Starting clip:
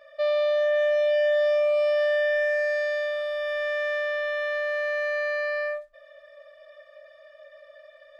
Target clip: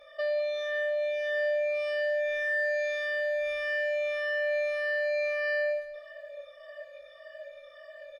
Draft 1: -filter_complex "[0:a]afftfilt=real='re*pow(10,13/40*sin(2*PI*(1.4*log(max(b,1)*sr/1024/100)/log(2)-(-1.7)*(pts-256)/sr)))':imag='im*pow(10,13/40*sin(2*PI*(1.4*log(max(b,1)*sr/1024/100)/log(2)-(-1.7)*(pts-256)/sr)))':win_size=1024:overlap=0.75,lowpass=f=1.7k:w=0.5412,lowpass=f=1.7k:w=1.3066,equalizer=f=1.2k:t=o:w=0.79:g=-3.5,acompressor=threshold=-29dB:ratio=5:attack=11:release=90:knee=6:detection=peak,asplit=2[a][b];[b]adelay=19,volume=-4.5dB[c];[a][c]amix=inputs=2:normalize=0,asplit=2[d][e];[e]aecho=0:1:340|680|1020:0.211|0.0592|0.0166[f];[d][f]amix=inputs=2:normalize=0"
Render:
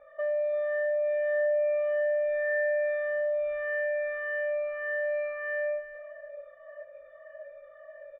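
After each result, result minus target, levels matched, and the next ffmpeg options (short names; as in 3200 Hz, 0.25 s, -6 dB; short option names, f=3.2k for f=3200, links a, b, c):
echo 0.134 s late; 2000 Hz band -3.5 dB
-filter_complex "[0:a]afftfilt=real='re*pow(10,13/40*sin(2*PI*(1.4*log(max(b,1)*sr/1024/100)/log(2)-(-1.7)*(pts-256)/sr)))':imag='im*pow(10,13/40*sin(2*PI*(1.4*log(max(b,1)*sr/1024/100)/log(2)-(-1.7)*(pts-256)/sr)))':win_size=1024:overlap=0.75,lowpass=f=1.7k:w=0.5412,lowpass=f=1.7k:w=1.3066,equalizer=f=1.2k:t=o:w=0.79:g=-3.5,acompressor=threshold=-29dB:ratio=5:attack=11:release=90:knee=6:detection=peak,asplit=2[a][b];[b]adelay=19,volume=-4.5dB[c];[a][c]amix=inputs=2:normalize=0,asplit=2[d][e];[e]aecho=0:1:206|412|618:0.211|0.0592|0.0166[f];[d][f]amix=inputs=2:normalize=0"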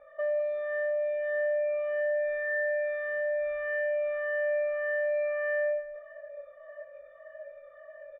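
2000 Hz band -2.5 dB
-filter_complex "[0:a]afftfilt=real='re*pow(10,13/40*sin(2*PI*(1.4*log(max(b,1)*sr/1024/100)/log(2)-(-1.7)*(pts-256)/sr)))':imag='im*pow(10,13/40*sin(2*PI*(1.4*log(max(b,1)*sr/1024/100)/log(2)-(-1.7)*(pts-256)/sr)))':win_size=1024:overlap=0.75,equalizer=f=1.2k:t=o:w=0.79:g=-3.5,acompressor=threshold=-29dB:ratio=5:attack=11:release=90:knee=6:detection=peak,asplit=2[a][b];[b]adelay=19,volume=-4.5dB[c];[a][c]amix=inputs=2:normalize=0,asplit=2[d][e];[e]aecho=0:1:206|412|618:0.211|0.0592|0.0166[f];[d][f]amix=inputs=2:normalize=0"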